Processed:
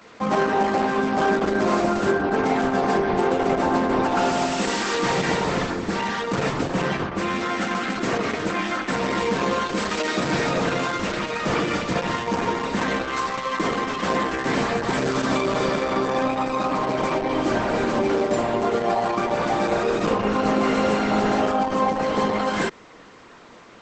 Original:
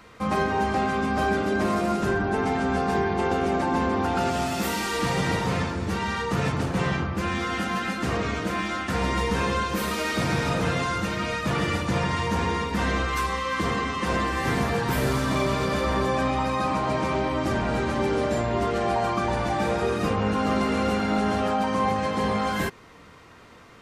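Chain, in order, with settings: high-pass 250 Hz 12 dB/octave; bass shelf 460 Hz +4.5 dB; trim +3.5 dB; Opus 10 kbps 48 kHz

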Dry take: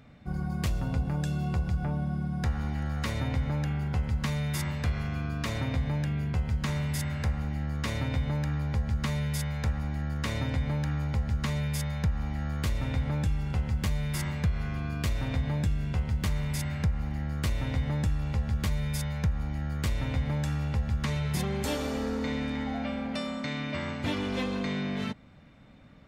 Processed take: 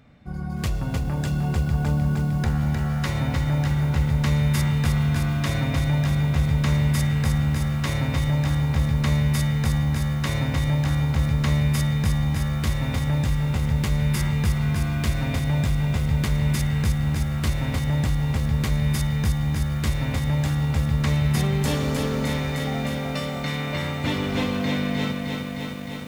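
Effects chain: level rider gain up to 4 dB; bit-crushed delay 307 ms, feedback 80%, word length 8-bit, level -5 dB

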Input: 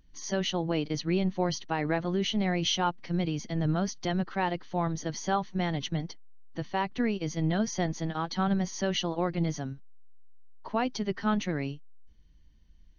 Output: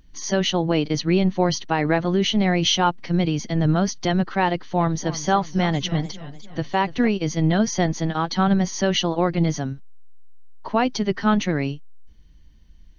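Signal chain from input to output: 4.51–7.08 s: modulated delay 294 ms, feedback 47%, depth 132 cents, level -15 dB; trim +8.5 dB

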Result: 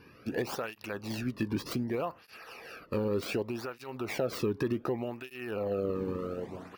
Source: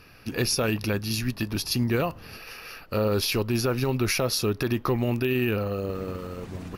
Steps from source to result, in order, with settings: tracing distortion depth 0.19 ms; treble shelf 2.2 kHz -11.5 dB; compression, threshold -27 dBFS, peak gain reduction 7 dB; cancelling through-zero flanger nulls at 0.66 Hz, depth 1.6 ms; trim +2.5 dB

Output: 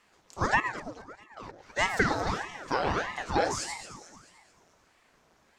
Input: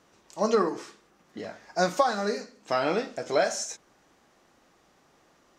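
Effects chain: 0.60–1.63 s: level held to a coarse grid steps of 20 dB; echo whose repeats swap between lows and highs 110 ms, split 1 kHz, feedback 68%, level -8 dB; ring modulator with a swept carrier 800 Hz, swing 90%, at 1.6 Hz

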